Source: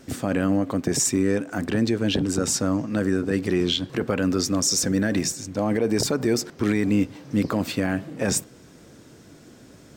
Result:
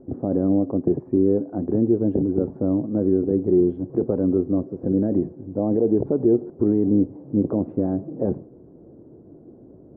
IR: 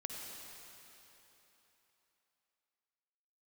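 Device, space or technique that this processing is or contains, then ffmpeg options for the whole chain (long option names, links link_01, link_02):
under water: -af "lowpass=frequency=730:width=0.5412,lowpass=frequency=730:width=1.3066,equalizer=frequency=360:width_type=o:width=0.54:gain=7"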